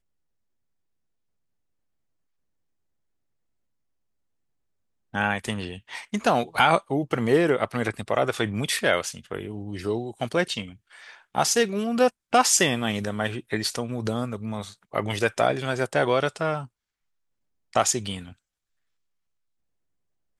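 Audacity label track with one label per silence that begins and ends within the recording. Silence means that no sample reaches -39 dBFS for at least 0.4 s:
16.660000	17.730000	silence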